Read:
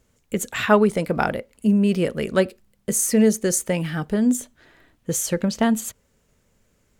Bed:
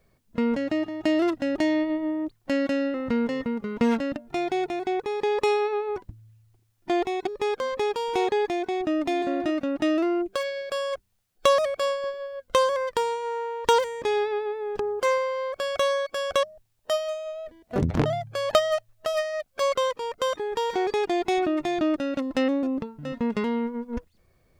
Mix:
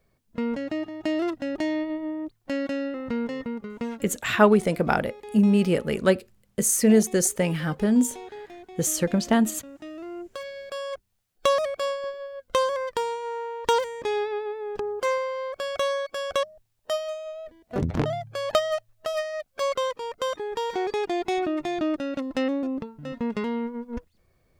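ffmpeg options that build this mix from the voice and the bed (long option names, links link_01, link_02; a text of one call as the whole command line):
ffmpeg -i stem1.wav -i stem2.wav -filter_complex "[0:a]adelay=3700,volume=-1dB[link_01];[1:a]volume=11dB,afade=type=out:start_time=3.56:duration=0.46:silence=0.223872,afade=type=in:start_time=9.94:duration=1.24:silence=0.188365[link_02];[link_01][link_02]amix=inputs=2:normalize=0" out.wav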